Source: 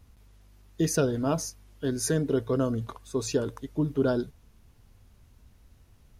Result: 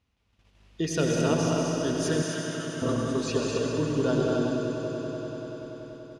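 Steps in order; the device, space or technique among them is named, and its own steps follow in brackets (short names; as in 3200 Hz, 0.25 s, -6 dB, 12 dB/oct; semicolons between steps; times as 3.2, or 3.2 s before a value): stadium PA (HPF 150 Hz 6 dB/oct; bell 2800 Hz +7 dB 0.97 oct; loudspeakers at several distances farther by 68 m -6 dB, 89 m -5 dB; reverb RT60 2.1 s, pre-delay 84 ms, DRR 1 dB); gate -55 dBFS, range -11 dB; 2.22–2.82 elliptic high-pass 1400 Hz; LPF 6200 Hz 12 dB/oct; swelling echo 96 ms, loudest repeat 5, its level -15.5 dB; gain -2 dB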